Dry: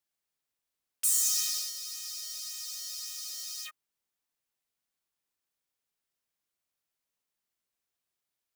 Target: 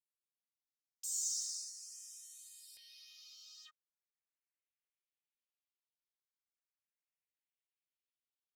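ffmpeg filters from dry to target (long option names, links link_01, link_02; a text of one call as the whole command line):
ffmpeg -i in.wav -filter_complex "[0:a]asetnsamples=nb_out_samples=441:pad=0,asendcmd='2.77 bandpass f 2500',bandpass=frequency=7200:width_type=q:width=1.5:csg=0,asplit=2[link_01][link_02];[link_02]afreqshift=0.4[link_03];[link_01][link_03]amix=inputs=2:normalize=1,volume=-6.5dB" out.wav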